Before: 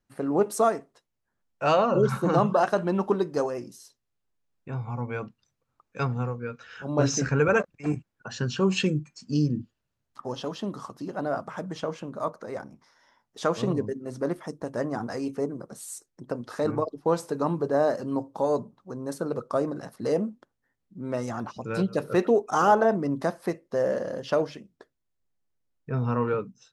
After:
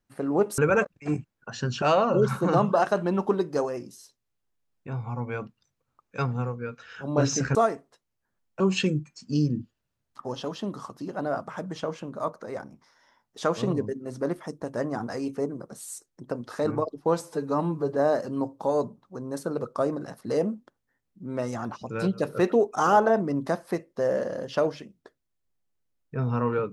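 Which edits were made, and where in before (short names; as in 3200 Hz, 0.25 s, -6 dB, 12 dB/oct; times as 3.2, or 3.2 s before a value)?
0.58–1.63 swap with 7.36–8.6
17.21–17.71 stretch 1.5×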